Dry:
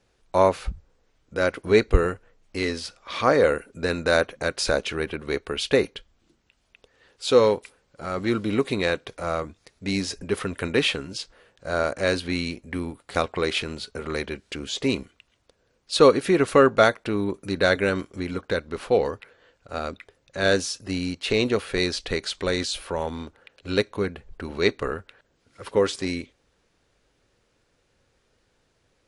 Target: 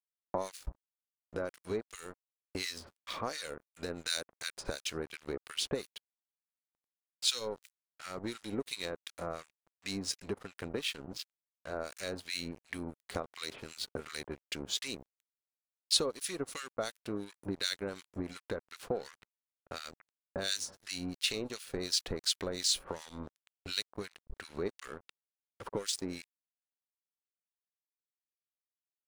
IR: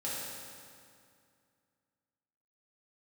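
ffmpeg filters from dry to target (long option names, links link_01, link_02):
-filter_complex "[0:a]agate=range=-11dB:threshold=-46dB:ratio=16:detection=peak,asettb=1/sr,asplit=3[link_01][link_02][link_03];[link_01]atrim=end=10.384[link_04];[link_02]atrim=start=10.38:end=11.76,asetpts=PTS-STARTPTS,afade=type=in:duration=0.004:curve=qsin,afade=type=out:start_time=1.376:duration=0.004:curve=qsin,highshelf=frequency=3400:gain=-11.5[link_05];[link_03]atrim=start=11.756[link_06];[link_04][link_05]acrossfade=duration=0.004:curve1=hsin:curve2=qsin[link_07];[link_07][link_06]acrossfade=duration=0.004:curve1=qsin:curve2=hsin,acrossover=split=4200[link_08][link_09];[link_08]acompressor=threshold=-37dB:ratio=5[link_10];[link_10][link_09]amix=inputs=2:normalize=0,asplit=2[link_11][link_12];[link_12]adelay=326.5,volume=-25dB,highshelf=frequency=4000:gain=-7.35[link_13];[link_11][link_13]amix=inputs=2:normalize=0,aeval=exprs='sgn(val(0))*max(abs(val(0))-0.00531,0)':channel_layout=same,acrossover=split=1400[link_14][link_15];[link_14]aeval=exprs='val(0)*(1-1/2+1/2*cos(2*PI*2.8*n/s))':channel_layout=same[link_16];[link_15]aeval=exprs='val(0)*(1-1/2-1/2*cos(2*PI*2.8*n/s))':channel_layout=same[link_17];[link_16][link_17]amix=inputs=2:normalize=0,volume=5dB"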